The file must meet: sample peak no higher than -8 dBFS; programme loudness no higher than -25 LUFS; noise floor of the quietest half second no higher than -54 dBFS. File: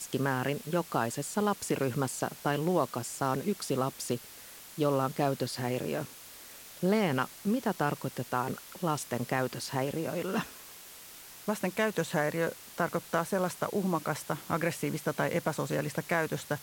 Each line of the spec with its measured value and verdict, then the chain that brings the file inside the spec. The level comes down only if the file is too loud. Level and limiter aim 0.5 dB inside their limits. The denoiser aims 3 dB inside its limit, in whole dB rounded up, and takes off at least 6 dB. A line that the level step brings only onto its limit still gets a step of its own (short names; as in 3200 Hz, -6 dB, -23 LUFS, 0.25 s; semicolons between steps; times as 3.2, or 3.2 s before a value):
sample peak -14.5 dBFS: OK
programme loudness -32.0 LUFS: OK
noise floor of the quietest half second -49 dBFS: fail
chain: denoiser 8 dB, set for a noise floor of -49 dBFS